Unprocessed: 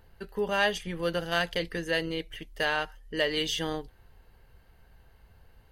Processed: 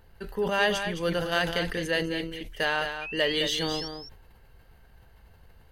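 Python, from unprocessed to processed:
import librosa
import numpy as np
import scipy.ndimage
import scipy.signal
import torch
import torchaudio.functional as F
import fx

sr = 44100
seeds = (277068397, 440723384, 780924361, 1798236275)

y = fx.spec_paint(x, sr, seeds[0], shape='rise', start_s=3.01, length_s=0.87, low_hz=2400.0, high_hz=5600.0, level_db=-39.0)
y = y + 10.0 ** (-8.5 / 20.0) * np.pad(y, (int(212 * sr / 1000.0), 0))[:len(y)]
y = fx.sustainer(y, sr, db_per_s=66.0)
y = F.gain(torch.from_numpy(y), 1.0).numpy()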